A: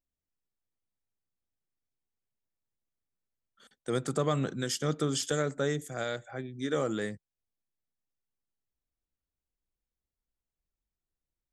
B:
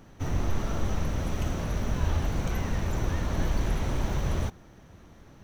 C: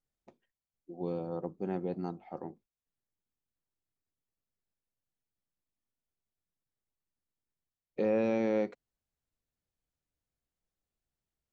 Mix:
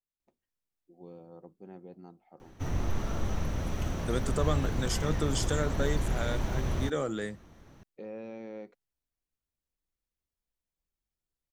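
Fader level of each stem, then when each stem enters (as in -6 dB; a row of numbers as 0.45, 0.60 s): -1.5, -3.0, -13.0 dB; 0.20, 2.40, 0.00 s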